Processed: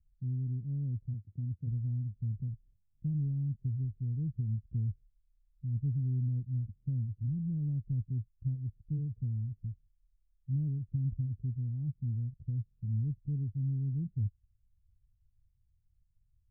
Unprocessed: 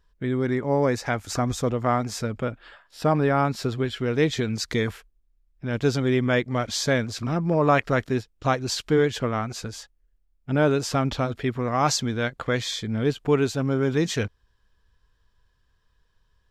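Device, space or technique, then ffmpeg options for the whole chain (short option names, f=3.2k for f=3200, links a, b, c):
the neighbour's flat through the wall: -filter_complex "[0:a]lowpass=f=160:w=0.5412,lowpass=f=160:w=1.3066,equalizer=f=100:t=o:w=0.88:g=5.5,asplit=3[a][b][c];[a]afade=t=out:st=1.13:d=0.02[d];[b]highpass=140,afade=t=in:st=1.13:d=0.02,afade=t=out:st=1.66:d=0.02[e];[c]afade=t=in:st=1.66:d=0.02[f];[d][e][f]amix=inputs=3:normalize=0,volume=-5.5dB"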